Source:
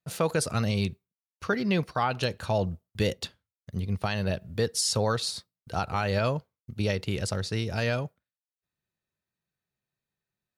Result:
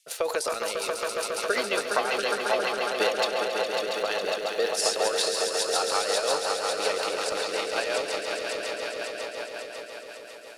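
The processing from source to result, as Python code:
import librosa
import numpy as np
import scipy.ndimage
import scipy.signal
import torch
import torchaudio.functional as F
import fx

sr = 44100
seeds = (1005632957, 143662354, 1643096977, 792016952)

y = scipy.signal.sosfilt(scipy.signal.butter(4, 430.0, 'highpass', fs=sr, output='sos'), x)
y = fx.transient(y, sr, attack_db=7, sustain_db=11)
y = fx.dmg_noise_band(y, sr, seeds[0], low_hz=2300.0, high_hz=12000.0, level_db=-62.0)
y = fx.echo_swell(y, sr, ms=137, loudest=5, wet_db=-6.5)
y = fx.rotary(y, sr, hz=5.5)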